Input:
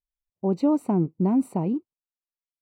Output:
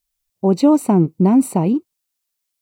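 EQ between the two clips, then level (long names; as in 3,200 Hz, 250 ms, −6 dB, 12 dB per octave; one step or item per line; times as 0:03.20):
high-shelf EQ 2,700 Hz +11.5 dB
+8.5 dB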